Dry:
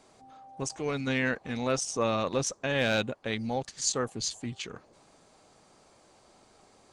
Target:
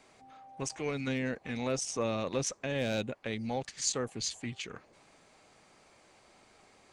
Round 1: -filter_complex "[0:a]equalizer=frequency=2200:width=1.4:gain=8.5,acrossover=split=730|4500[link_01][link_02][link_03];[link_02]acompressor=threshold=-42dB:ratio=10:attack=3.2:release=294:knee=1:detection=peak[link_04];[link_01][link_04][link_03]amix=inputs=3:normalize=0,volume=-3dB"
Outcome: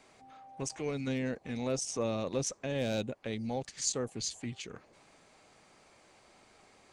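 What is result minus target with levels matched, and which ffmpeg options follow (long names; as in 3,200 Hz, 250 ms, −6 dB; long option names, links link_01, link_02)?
downward compressor: peak gain reduction +7 dB
-filter_complex "[0:a]equalizer=frequency=2200:width=1.4:gain=8.5,acrossover=split=730|4500[link_01][link_02][link_03];[link_02]acompressor=threshold=-34.5dB:ratio=10:attack=3.2:release=294:knee=1:detection=peak[link_04];[link_01][link_04][link_03]amix=inputs=3:normalize=0,volume=-3dB"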